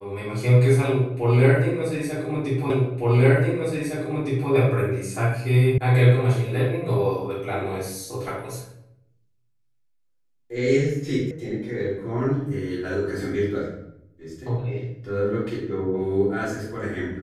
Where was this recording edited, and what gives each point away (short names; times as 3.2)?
2.7 repeat of the last 1.81 s
5.78 sound cut off
11.31 sound cut off